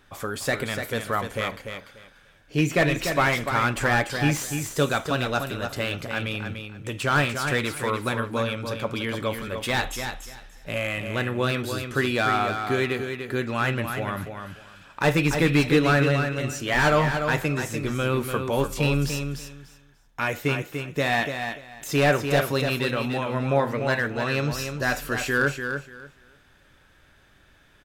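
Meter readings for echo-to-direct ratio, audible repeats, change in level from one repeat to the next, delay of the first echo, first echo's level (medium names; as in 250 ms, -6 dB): -7.0 dB, 3, -14.0 dB, 293 ms, -7.0 dB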